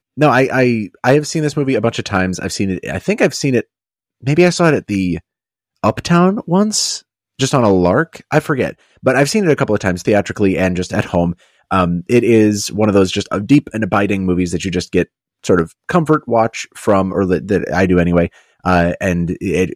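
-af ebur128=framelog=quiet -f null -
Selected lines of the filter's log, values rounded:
Integrated loudness:
  I:         -15.4 LUFS
  Threshold: -25.5 LUFS
Loudness range:
  LRA:         2.0 LU
  Threshold: -35.7 LUFS
  LRA low:   -16.7 LUFS
  LRA high:  -14.7 LUFS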